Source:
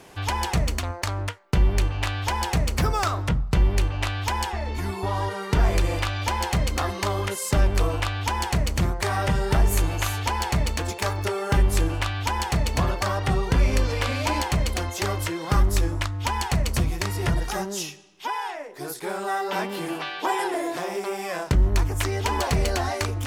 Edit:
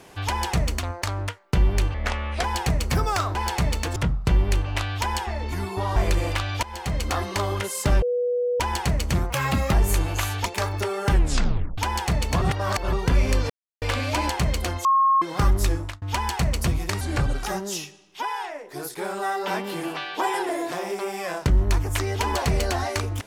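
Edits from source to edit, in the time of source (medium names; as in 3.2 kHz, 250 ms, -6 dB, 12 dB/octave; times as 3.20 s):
1.94–2.31 s: speed 74%
5.22–5.63 s: delete
6.30–6.76 s: fade in, from -17 dB
7.69–8.27 s: bleep 489 Hz -20.5 dBFS
8.97–9.56 s: speed 138%
10.29–10.90 s: move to 3.22 s
11.57 s: tape stop 0.65 s
12.86–13.37 s: reverse
13.94 s: insert silence 0.32 s
14.97–15.34 s: bleep 1.08 kHz -15 dBFS
15.86–16.14 s: fade out
17.13–17.48 s: speed 83%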